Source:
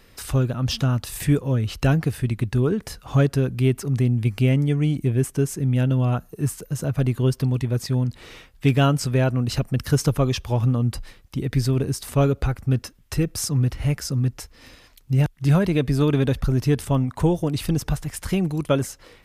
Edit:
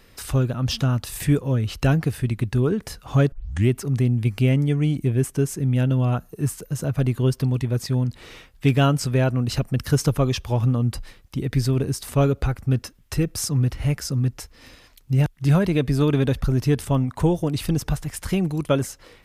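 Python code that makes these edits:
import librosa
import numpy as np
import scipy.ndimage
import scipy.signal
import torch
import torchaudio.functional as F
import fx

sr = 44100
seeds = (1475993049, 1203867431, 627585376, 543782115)

y = fx.edit(x, sr, fx.tape_start(start_s=3.32, length_s=0.37), tone=tone)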